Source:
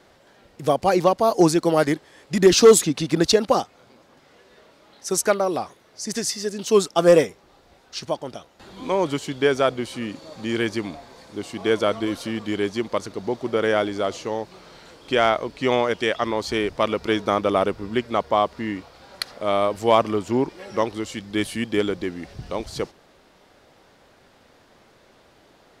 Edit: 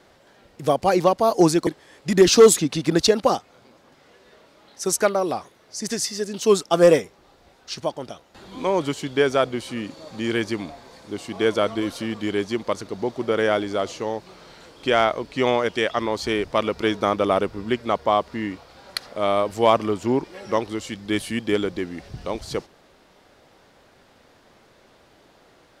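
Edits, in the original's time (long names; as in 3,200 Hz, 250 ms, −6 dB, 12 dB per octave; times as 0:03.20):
0:01.67–0:01.92: remove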